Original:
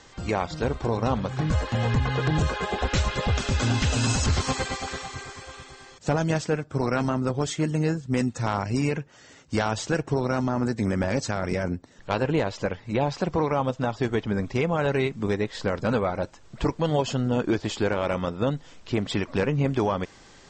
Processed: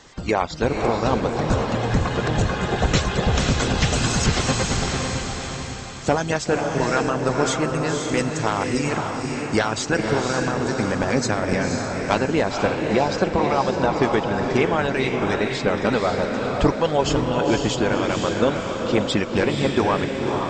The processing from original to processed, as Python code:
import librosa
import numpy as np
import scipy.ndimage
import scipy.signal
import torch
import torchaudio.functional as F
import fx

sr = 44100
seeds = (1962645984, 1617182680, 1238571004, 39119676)

y = fx.cheby_harmonics(x, sr, harmonics=(2,), levels_db=(-27,), full_scale_db=-12.5)
y = fx.hpss(y, sr, part='harmonic', gain_db=-11)
y = fx.echo_diffused(y, sr, ms=514, feedback_pct=47, wet_db=-3)
y = y * librosa.db_to_amplitude(7.0)